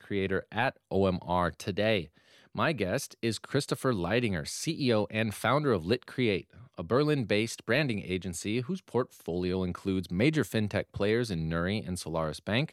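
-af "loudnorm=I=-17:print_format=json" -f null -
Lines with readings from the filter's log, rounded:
"input_i" : "-30.3",
"input_tp" : "-12.7",
"input_lra" : "1.3",
"input_thresh" : "-40.5",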